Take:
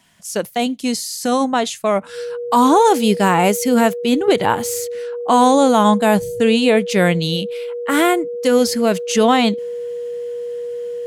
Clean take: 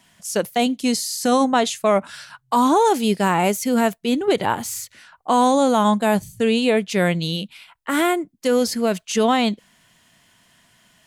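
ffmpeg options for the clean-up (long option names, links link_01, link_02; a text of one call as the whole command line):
ffmpeg -i in.wav -af "bandreject=frequency=480:width=30,asetnsamples=nb_out_samples=441:pad=0,asendcmd='2.49 volume volume -4dB',volume=0dB" out.wav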